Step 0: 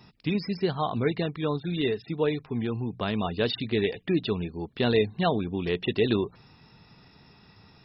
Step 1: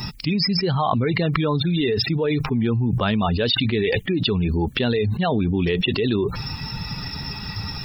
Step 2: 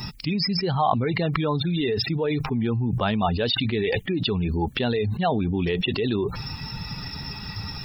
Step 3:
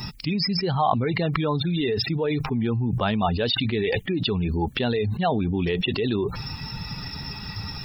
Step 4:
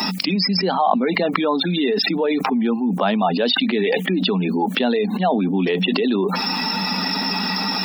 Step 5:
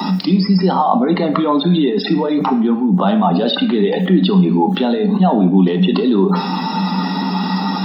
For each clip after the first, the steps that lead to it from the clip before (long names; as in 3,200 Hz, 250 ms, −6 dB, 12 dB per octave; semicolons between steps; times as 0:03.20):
spectral dynamics exaggerated over time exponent 1.5; envelope flattener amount 100%
dynamic equaliser 780 Hz, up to +6 dB, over −38 dBFS, Q 2.6; level −3.5 dB
no processing that can be heard
Chebyshev high-pass with heavy ripple 180 Hz, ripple 6 dB; envelope flattener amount 70%; level +3.5 dB
convolution reverb RT60 0.55 s, pre-delay 3 ms, DRR 5 dB; level −9.5 dB